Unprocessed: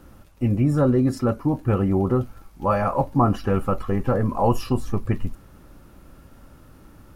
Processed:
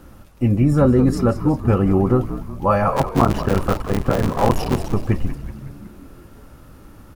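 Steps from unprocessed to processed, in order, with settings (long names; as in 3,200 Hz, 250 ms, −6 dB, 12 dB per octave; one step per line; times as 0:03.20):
0:02.96–0:04.91: sub-harmonics by changed cycles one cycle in 3, muted
on a send: echo with shifted repeats 185 ms, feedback 57%, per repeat −72 Hz, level −11.5 dB
on the sum: level +4 dB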